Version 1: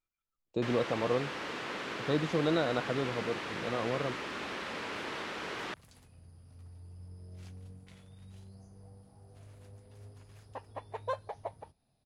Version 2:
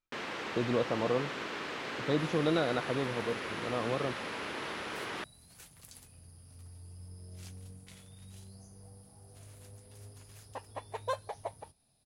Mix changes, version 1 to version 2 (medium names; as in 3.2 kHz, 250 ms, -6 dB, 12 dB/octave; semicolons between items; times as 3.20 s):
first sound: entry -0.50 s; second sound: remove low-pass 2.1 kHz 6 dB/octave